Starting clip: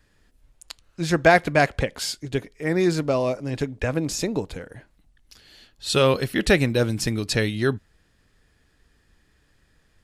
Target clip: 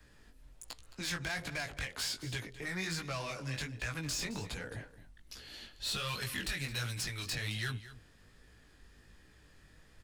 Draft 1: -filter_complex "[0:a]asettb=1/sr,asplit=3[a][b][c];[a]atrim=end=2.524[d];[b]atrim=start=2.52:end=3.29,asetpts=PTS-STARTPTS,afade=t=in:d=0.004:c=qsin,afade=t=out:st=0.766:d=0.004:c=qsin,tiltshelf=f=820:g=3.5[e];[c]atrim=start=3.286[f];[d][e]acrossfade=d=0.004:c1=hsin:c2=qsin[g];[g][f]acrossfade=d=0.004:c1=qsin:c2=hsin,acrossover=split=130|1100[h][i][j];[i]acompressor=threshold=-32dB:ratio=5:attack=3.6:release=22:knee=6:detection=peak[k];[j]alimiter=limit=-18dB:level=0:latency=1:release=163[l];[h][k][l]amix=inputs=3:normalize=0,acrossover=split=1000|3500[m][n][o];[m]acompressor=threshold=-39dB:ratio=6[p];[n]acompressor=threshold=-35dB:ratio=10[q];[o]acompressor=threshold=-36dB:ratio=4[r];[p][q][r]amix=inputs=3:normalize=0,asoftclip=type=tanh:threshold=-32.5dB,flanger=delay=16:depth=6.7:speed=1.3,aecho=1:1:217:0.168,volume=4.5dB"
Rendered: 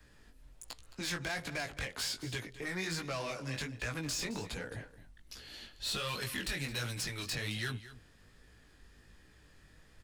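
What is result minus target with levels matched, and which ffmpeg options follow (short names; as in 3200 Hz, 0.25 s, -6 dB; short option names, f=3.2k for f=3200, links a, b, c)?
compressor: peak gain reduction -9 dB
-filter_complex "[0:a]asettb=1/sr,asplit=3[a][b][c];[a]atrim=end=2.524[d];[b]atrim=start=2.52:end=3.29,asetpts=PTS-STARTPTS,afade=t=in:d=0.004:c=qsin,afade=t=out:st=0.766:d=0.004:c=qsin,tiltshelf=f=820:g=3.5[e];[c]atrim=start=3.286[f];[d][e]acrossfade=d=0.004:c1=hsin:c2=qsin[g];[g][f]acrossfade=d=0.004:c1=qsin:c2=hsin,acrossover=split=130|1100[h][i][j];[i]acompressor=threshold=-43dB:ratio=5:attack=3.6:release=22:knee=6:detection=peak[k];[j]alimiter=limit=-18dB:level=0:latency=1:release=163[l];[h][k][l]amix=inputs=3:normalize=0,acrossover=split=1000|3500[m][n][o];[m]acompressor=threshold=-39dB:ratio=6[p];[n]acompressor=threshold=-35dB:ratio=10[q];[o]acompressor=threshold=-36dB:ratio=4[r];[p][q][r]amix=inputs=3:normalize=0,asoftclip=type=tanh:threshold=-32.5dB,flanger=delay=16:depth=6.7:speed=1.3,aecho=1:1:217:0.168,volume=4.5dB"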